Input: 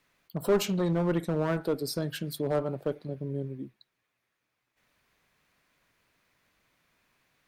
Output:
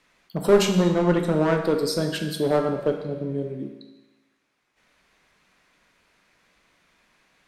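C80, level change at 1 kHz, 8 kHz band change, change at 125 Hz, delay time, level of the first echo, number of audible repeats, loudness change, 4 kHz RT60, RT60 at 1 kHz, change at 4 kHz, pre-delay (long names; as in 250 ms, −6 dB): 8.5 dB, +8.5 dB, +7.0 dB, +5.0 dB, no echo audible, no echo audible, no echo audible, +7.5 dB, 1.0 s, 1.1 s, +8.5 dB, 10 ms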